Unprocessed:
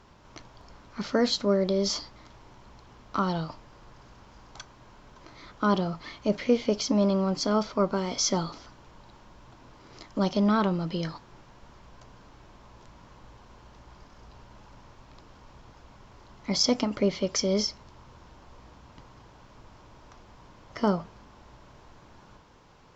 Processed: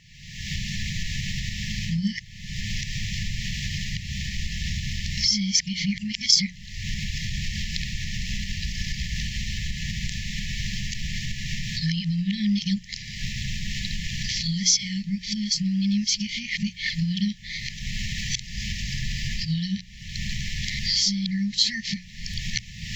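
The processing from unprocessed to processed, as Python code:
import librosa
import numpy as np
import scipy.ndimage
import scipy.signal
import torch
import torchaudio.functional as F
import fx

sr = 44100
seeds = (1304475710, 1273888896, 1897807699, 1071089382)

y = x[::-1].copy()
y = fx.recorder_agc(y, sr, target_db=-21.0, rise_db_per_s=52.0, max_gain_db=30)
y = fx.brickwall_bandstop(y, sr, low_hz=210.0, high_hz=1700.0)
y = fx.low_shelf(y, sr, hz=180.0, db=-4.5)
y = fx.hum_notches(y, sr, base_hz=60, count=3)
y = y * 10.0 ** (7.5 / 20.0)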